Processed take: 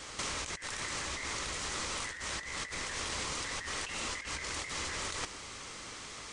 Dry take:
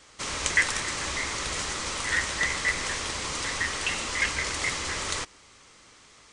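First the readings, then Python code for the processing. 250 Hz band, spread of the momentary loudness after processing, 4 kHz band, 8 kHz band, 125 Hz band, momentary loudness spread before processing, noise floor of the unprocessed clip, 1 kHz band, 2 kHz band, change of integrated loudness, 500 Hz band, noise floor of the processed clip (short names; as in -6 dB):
-6.5 dB, 8 LU, -7.0 dB, -7.0 dB, -7.0 dB, 6 LU, -55 dBFS, -6.5 dB, -11.5 dB, -9.5 dB, -6.5 dB, -46 dBFS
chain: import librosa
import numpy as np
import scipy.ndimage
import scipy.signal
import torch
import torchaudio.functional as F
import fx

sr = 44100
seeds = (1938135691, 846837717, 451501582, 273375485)

y = fx.over_compress(x, sr, threshold_db=-39.0, ratio=-1.0)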